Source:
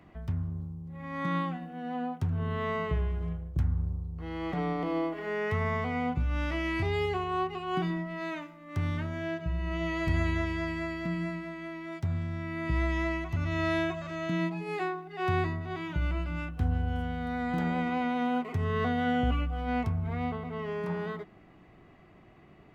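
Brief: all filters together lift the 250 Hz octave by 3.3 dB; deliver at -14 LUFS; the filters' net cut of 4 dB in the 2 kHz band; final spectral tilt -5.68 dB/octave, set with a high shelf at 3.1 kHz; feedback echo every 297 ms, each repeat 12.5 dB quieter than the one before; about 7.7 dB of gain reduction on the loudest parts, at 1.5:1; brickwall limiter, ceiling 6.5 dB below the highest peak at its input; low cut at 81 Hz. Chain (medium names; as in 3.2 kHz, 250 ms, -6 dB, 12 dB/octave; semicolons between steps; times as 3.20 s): high-pass 81 Hz; peaking EQ 250 Hz +4.5 dB; peaking EQ 2 kHz -3.5 dB; treble shelf 3.1 kHz -4 dB; compression 1.5:1, threshold -45 dBFS; peak limiter -30.5 dBFS; feedback delay 297 ms, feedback 24%, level -12.5 dB; trim +25.5 dB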